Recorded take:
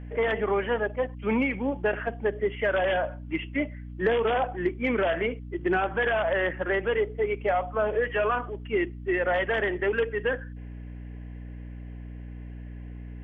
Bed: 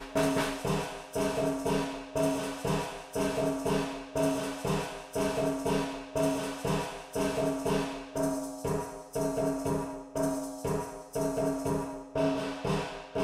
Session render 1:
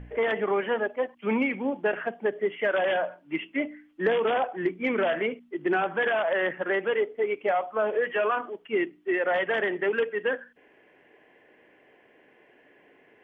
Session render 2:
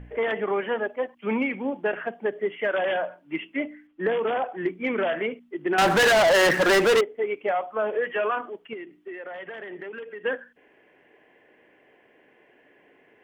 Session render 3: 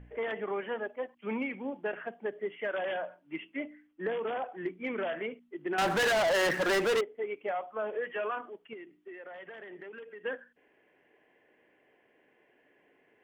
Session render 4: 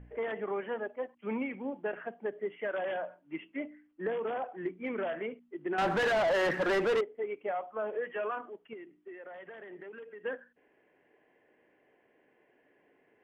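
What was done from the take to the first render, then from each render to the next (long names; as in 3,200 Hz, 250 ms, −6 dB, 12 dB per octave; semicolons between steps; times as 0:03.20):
hum removal 60 Hz, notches 5
0:03.87–0:04.46: high-frequency loss of the air 200 metres; 0:05.78–0:07.01: leveller curve on the samples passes 5; 0:08.73–0:10.24: downward compressor 8 to 1, threshold −34 dBFS
level −8.5 dB
low-pass filter 1,900 Hz 6 dB per octave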